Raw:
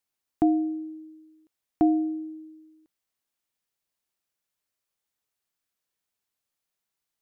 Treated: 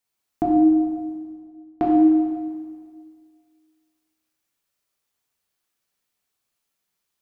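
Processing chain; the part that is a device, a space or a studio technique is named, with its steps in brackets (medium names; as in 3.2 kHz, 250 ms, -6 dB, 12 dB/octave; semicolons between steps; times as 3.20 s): 0.83–1.83 s: level-controlled noise filter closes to 330 Hz, open at -40 dBFS; stairwell (reverberation RT60 1.8 s, pre-delay 3 ms, DRR -4 dB); trim +1 dB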